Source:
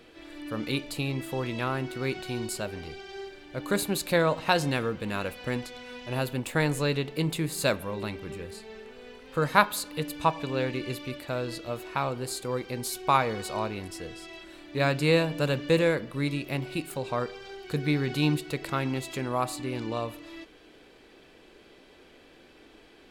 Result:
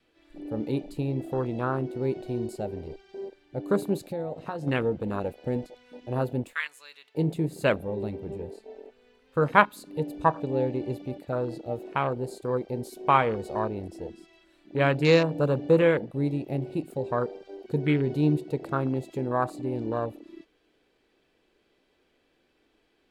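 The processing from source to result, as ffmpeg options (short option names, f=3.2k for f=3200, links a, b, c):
-filter_complex "[0:a]asplit=3[a][b][c];[a]afade=t=out:st=4.07:d=0.02[d];[b]acompressor=threshold=-34dB:ratio=3:attack=3.2:release=140:knee=1:detection=peak,afade=t=in:st=4.07:d=0.02,afade=t=out:st=4.66:d=0.02[e];[c]afade=t=in:st=4.66:d=0.02[f];[d][e][f]amix=inputs=3:normalize=0,asettb=1/sr,asplit=3[g][h][i];[g]atrim=end=6.534[j];[h]atrim=start=6.53:end=7.15,asetpts=PTS-STARTPTS,afade=t=in:d=0.004:c=qsin,afade=t=out:st=0.616:d=0.004:c=qsin,highpass=1.3k[k];[i]atrim=start=7.146[l];[j][k]acrossfade=d=0.004:c1=hsin:c2=qsin[m];[m][l]acrossfade=d=0.004:c1=qsin:c2=hsin,adynamicequalizer=threshold=0.00891:dfrequency=430:dqfactor=2.9:tfrequency=430:tqfactor=2.9:attack=5:release=100:ratio=0.375:range=1.5:mode=boostabove:tftype=bell,afwtdn=0.0282,volume=2dB"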